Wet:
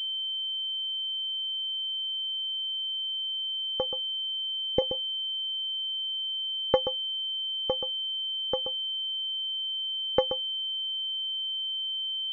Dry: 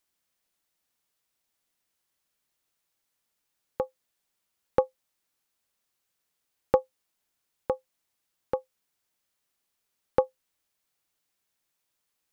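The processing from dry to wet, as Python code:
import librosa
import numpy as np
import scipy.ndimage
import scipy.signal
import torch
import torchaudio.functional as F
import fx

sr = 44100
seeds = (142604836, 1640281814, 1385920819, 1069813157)

p1 = fx.env_lowpass_down(x, sr, base_hz=630.0, full_db=-52.0, at=(3.85, 4.82))
p2 = p1 + fx.echo_single(p1, sr, ms=129, db=-10.0, dry=0)
p3 = fx.pwm(p2, sr, carrier_hz=3100.0)
y = p3 * librosa.db_to_amplitude(-1.0)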